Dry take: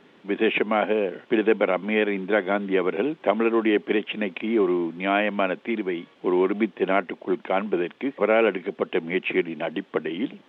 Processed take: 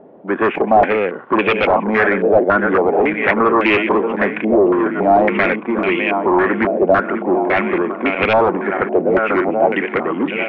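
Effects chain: regenerating reverse delay 0.627 s, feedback 68%, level -9 dB; sine folder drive 10 dB, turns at -6 dBFS; stepped low-pass 3.6 Hz 650–2500 Hz; gain -6 dB

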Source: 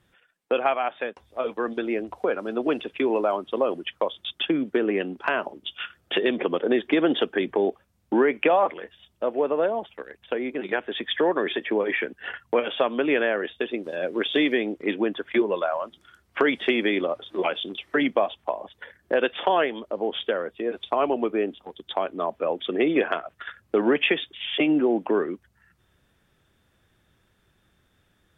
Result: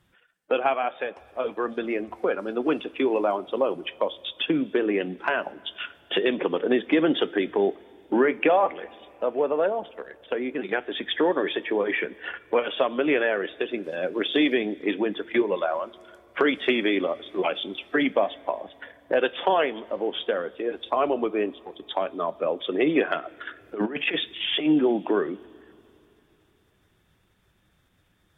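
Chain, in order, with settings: bin magnitudes rounded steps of 15 dB; 23.61–24.66 negative-ratio compressor -25 dBFS, ratio -0.5; two-slope reverb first 0.21 s, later 3.1 s, from -18 dB, DRR 15.5 dB

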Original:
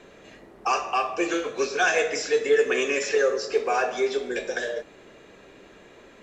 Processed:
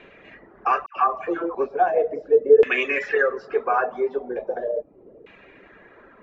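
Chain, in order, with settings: LFO low-pass saw down 0.38 Hz 460–2600 Hz; reverb removal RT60 0.58 s; 0.86–1.55 dispersion lows, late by 0.106 s, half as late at 1300 Hz

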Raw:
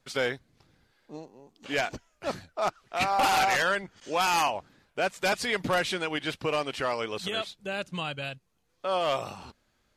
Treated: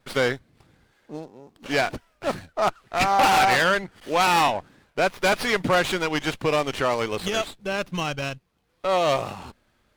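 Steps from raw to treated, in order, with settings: running maximum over 5 samples; gain +6 dB

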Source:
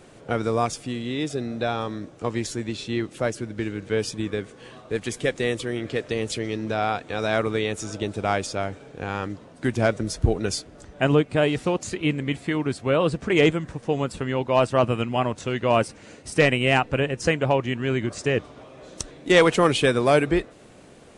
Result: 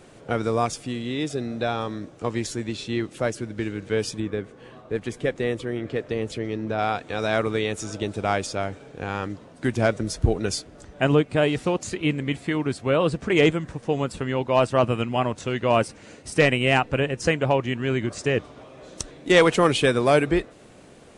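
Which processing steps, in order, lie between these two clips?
4.2–6.79 high shelf 2800 Hz -11 dB

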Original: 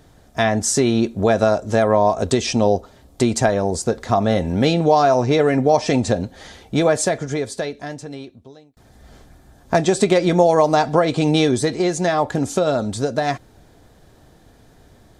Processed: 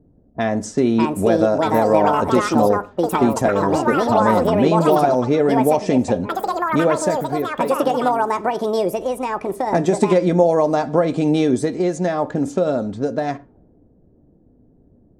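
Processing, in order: ten-band EQ 250 Hz +7 dB, 500 Hz +4 dB, 4000 Hz -5 dB; low-pass opened by the level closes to 370 Hz, open at -11 dBFS; echoes that change speed 0.713 s, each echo +6 st, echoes 2; on a send: reverb, pre-delay 3 ms, DRR 15 dB; on the sum: gain -5.5 dB

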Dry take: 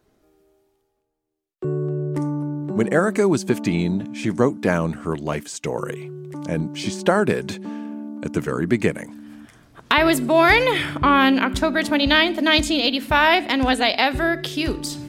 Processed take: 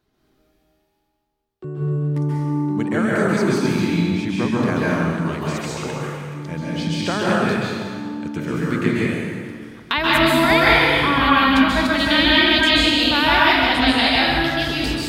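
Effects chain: graphic EQ 500/4000/8000 Hz -6/+5/-6 dB; plate-style reverb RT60 1.9 s, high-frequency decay 0.8×, pre-delay 0.12 s, DRR -6.5 dB; gain -4.5 dB

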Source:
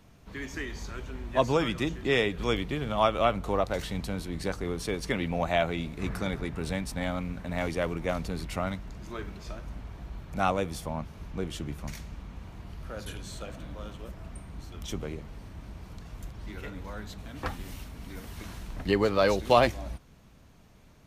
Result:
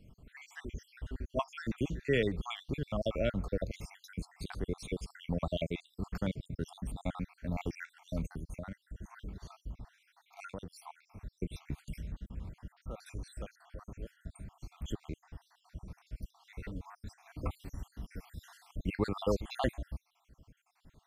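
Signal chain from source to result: random spectral dropouts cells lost 64%; 8.31–10.85 compressor 3:1, threshold -39 dBFS, peak gain reduction 9.5 dB; low shelf 310 Hz +7.5 dB; gain -6 dB

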